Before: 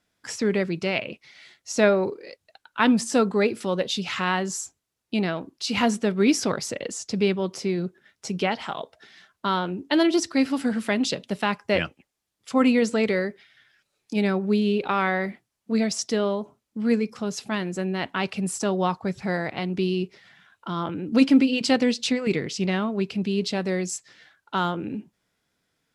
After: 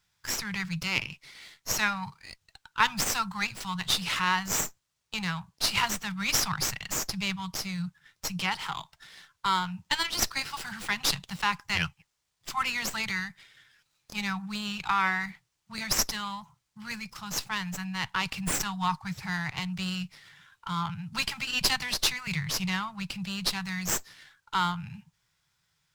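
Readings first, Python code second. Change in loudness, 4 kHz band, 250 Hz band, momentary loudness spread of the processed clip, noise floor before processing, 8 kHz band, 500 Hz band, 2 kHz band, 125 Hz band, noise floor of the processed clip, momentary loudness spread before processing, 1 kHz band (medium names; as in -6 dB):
-5.0 dB, +2.0 dB, -13.5 dB, 12 LU, -79 dBFS, +2.5 dB, -21.5 dB, -0.5 dB, -5.0 dB, -78 dBFS, 12 LU, -2.0 dB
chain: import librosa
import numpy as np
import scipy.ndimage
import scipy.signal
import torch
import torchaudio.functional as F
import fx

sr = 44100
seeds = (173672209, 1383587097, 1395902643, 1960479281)

y = scipy.signal.sosfilt(scipy.signal.ellip(3, 1.0, 40, [160.0, 890.0], 'bandstop', fs=sr, output='sos'), x)
y = fx.bass_treble(y, sr, bass_db=3, treble_db=7)
y = fx.running_max(y, sr, window=3)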